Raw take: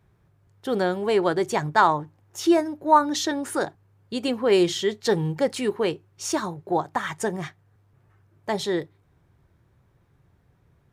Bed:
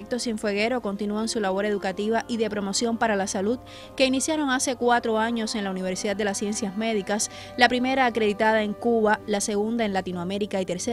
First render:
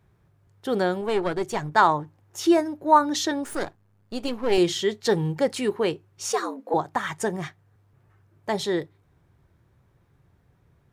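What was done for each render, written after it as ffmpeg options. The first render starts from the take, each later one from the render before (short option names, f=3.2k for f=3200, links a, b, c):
-filter_complex "[0:a]asettb=1/sr,asplit=3[a][b][c];[a]atrim=end=1.014[d];[b]atrim=start=1.01:end=1.72,asetpts=PTS-STARTPTS,afade=t=in:d=0.004:c=qsin,afade=t=out:st=0.706:d=0.004:c=qsin,aeval=exprs='(tanh(5.01*val(0)+0.65)-tanh(0.65))/5.01':c=same[e];[c]atrim=start=1.716[f];[d][e]acrossfade=d=0.004:c1=hsin:c2=qsin[g];[g][f]acrossfade=d=0.004:c1=qsin:c2=hsin,asettb=1/sr,asplit=3[h][i][j];[h]atrim=end=3.444[k];[i]atrim=start=3.44:end=4.58,asetpts=PTS-STARTPTS,afade=t=in:d=0.004:c=qsin,afade=t=out:st=1.136:d=0.004:c=qsin,aeval=exprs='if(lt(val(0),0),0.251*val(0),val(0))':c=same[l];[j]atrim=start=4.576[m];[k][l]acrossfade=d=0.004:c1=hsin:c2=qsin[n];[n][m]acrossfade=d=0.004:c1=qsin:c2=hsin,asettb=1/sr,asplit=3[o][p][q];[o]atrim=end=6.304[r];[p]atrim=start=6.3:end=6.74,asetpts=PTS-STARTPTS,afade=t=in:d=0.004:c=qsin,afade=t=out:st=0.436:d=0.004:c=qsin,afreqshift=120[s];[q]atrim=start=6.736[t];[r][s]acrossfade=d=0.004:c1=hsin:c2=qsin[u];[u][t]acrossfade=d=0.004:c1=qsin:c2=hsin"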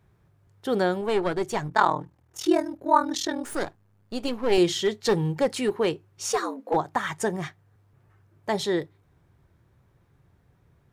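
-filter_complex "[0:a]asettb=1/sr,asplit=3[a][b][c];[a]atrim=end=1.684[d];[b]atrim=start=1.68:end=3.45,asetpts=PTS-STARTPTS,afade=t=in:d=0.004:c=qsin,afade=t=out:st=1.766:d=0.004:c=qsin,aeval=exprs='val(0)*sin(2*PI*20*n/s)':c=same[e];[c]atrim=start=3.446[f];[d][e]acrossfade=d=0.004:c1=hsin:c2=qsin[g];[g][f]acrossfade=d=0.004:c1=qsin:c2=hsin,asplit=3[h][i][j];[h]afade=t=out:st=4.77:d=0.02[k];[i]aeval=exprs='clip(val(0),-1,0.133)':c=same,afade=t=in:st=4.77:d=0.02,afade=t=out:st=6.75:d=0.02[l];[j]afade=t=in:st=6.75:d=0.02[m];[k][l][m]amix=inputs=3:normalize=0"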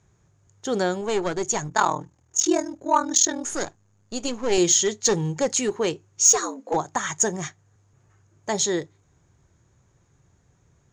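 -af "lowpass=f=6.7k:t=q:w=14,asoftclip=type=tanh:threshold=-5dB"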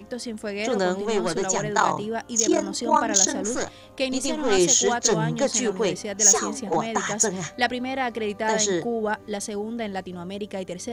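-filter_complex "[1:a]volume=-5dB[a];[0:a][a]amix=inputs=2:normalize=0"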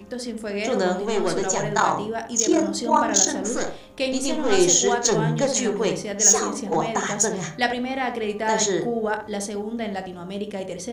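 -filter_complex "[0:a]asplit=2[a][b];[b]adelay=25,volume=-11.5dB[c];[a][c]amix=inputs=2:normalize=0,asplit=2[d][e];[e]adelay=65,lowpass=f=1k:p=1,volume=-5dB,asplit=2[f][g];[g]adelay=65,lowpass=f=1k:p=1,volume=0.35,asplit=2[h][i];[i]adelay=65,lowpass=f=1k:p=1,volume=0.35,asplit=2[j][k];[k]adelay=65,lowpass=f=1k:p=1,volume=0.35[l];[d][f][h][j][l]amix=inputs=5:normalize=0"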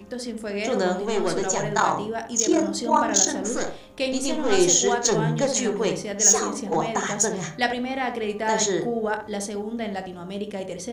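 -af "volume=-1dB"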